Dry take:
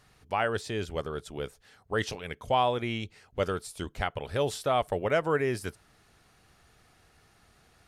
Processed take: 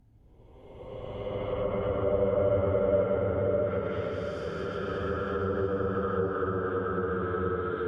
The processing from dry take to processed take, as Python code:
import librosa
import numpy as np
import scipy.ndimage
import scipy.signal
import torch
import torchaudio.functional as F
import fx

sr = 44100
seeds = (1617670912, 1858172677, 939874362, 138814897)

y = fx.paulstretch(x, sr, seeds[0], factor=33.0, window_s=0.1, from_s=3.33)
y = fx.env_lowpass_down(y, sr, base_hz=880.0, full_db=-24.0)
y = fx.echo_feedback(y, sr, ms=693, feedback_pct=40, wet_db=-10.0)